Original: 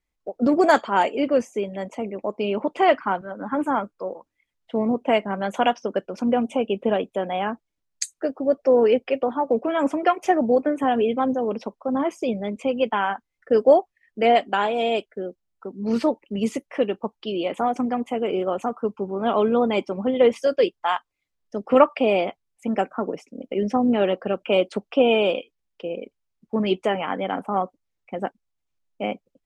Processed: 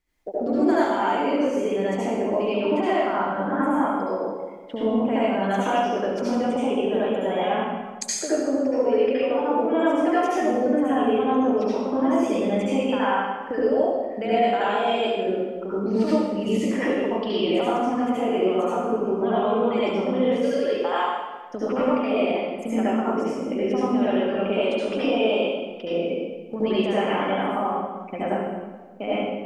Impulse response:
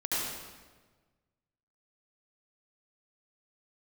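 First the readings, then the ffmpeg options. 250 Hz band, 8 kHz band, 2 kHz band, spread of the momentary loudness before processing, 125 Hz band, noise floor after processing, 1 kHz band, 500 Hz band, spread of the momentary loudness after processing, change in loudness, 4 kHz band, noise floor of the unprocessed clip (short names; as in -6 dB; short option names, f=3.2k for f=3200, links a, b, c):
+2.0 dB, +3.5 dB, -0.5 dB, 13 LU, n/a, -36 dBFS, -0.5 dB, -0.5 dB, 7 LU, -0.5 dB, 0.0 dB, -79 dBFS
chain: -filter_complex "[0:a]acompressor=threshold=-31dB:ratio=6[a];[1:a]atrim=start_sample=2205[b];[a][b]afir=irnorm=-1:irlink=0,volume=4dB"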